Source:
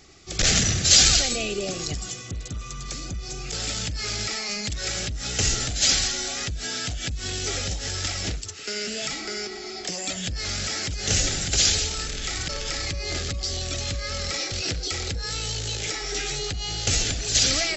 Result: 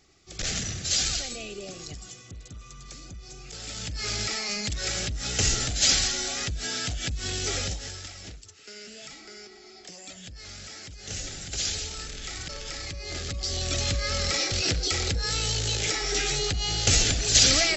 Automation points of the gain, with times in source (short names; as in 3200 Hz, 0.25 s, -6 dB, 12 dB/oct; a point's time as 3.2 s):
3.62 s -10 dB
4.08 s -1 dB
7.64 s -1 dB
8.1 s -13.5 dB
11.05 s -13.5 dB
11.97 s -7 dB
13.04 s -7 dB
13.78 s +2 dB